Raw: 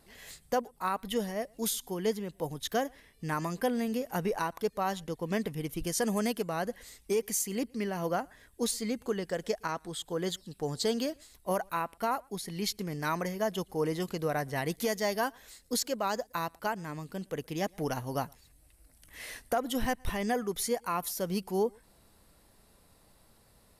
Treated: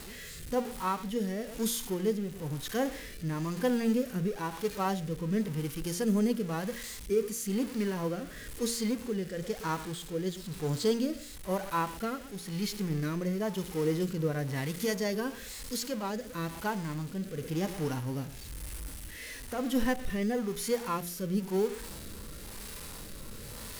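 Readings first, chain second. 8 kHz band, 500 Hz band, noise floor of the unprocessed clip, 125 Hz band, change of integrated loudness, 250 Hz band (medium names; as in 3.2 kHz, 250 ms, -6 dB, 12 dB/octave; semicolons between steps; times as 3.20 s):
-2.0 dB, -0.5 dB, -63 dBFS, +4.5 dB, 0.0 dB, +3.5 dB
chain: jump at every zero crossing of -35 dBFS; harmonic-percussive split percussive -11 dB; peaking EQ 680 Hz -7 dB 0.38 oct; de-hum 58.32 Hz, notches 15; modulation noise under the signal 26 dB; rotary cabinet horn 1 Hz; trim +3.5 dB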